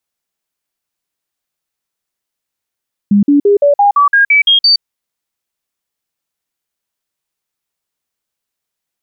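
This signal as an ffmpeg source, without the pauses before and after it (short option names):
-f lavfi -i "aevalsrc='0.562*clip(min(mod(t,0.17),0.12-mod(t,0.17))/0.005,0,1)*sin(2*PI*203*pow(2,floor(t/0.17)/2)*mod(t,0.17))':d=1.7:s=44100"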